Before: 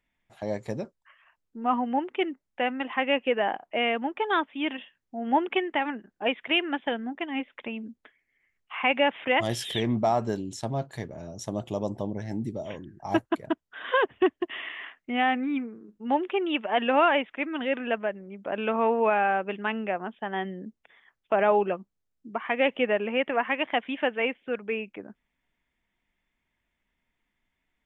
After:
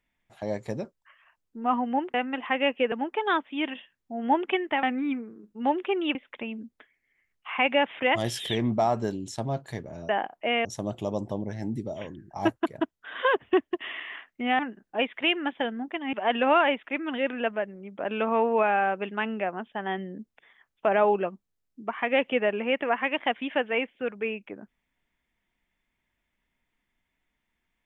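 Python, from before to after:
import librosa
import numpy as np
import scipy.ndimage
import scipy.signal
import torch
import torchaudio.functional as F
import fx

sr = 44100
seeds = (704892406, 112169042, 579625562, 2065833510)

y = fx.edit(x, sr, fx.cut(start_s=2.14, length_s=0.47),
    fx.move(start_s=3.39, length_s=0.56, to_s=11.34),
    fx.swap(start_s=5.86, length_s=1.54, other_s=15.28, other_length_s=1.32), tone=tone)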